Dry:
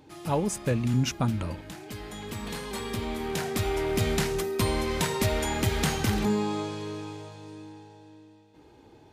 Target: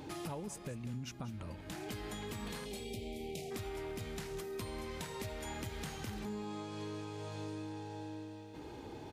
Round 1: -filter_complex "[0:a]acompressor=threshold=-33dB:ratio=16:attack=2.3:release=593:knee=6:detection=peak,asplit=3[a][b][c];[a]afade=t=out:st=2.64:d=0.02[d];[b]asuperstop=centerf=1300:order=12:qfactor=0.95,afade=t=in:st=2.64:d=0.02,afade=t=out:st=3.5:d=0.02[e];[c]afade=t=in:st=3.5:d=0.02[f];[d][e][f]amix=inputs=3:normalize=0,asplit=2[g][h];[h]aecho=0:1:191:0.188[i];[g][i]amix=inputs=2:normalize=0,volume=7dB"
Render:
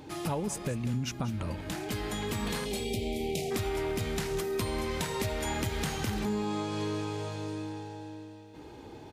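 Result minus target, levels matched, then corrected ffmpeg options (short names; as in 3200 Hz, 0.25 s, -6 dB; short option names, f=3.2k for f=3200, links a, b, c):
compressor: peak gain reduction -10.5 dB
-filter_complex "[0:a]acompressor=threshold=-44dB:ratio=16:attack=2.3:release=593:knee=6:detection=peak,asplit=3[a][b][c];[a]afade=t=out:st=2.64:d=0.02[d];[b]asuperstop=centerf=1300:order=12:qfactor=0.95,afade=t=in:st=2.64:d=0.02,afade=t=out:st=3.5:d=0.02[e];[c]afade=t=in:st=3.5:d=0.02[f];[d][e][f]amix=inputs=3:normalize=0,asplit=2[g][h];[h]aecho=0:1:191:0.188[i];[g][i]amix=inputs=2:normalize=0,volume=7dB"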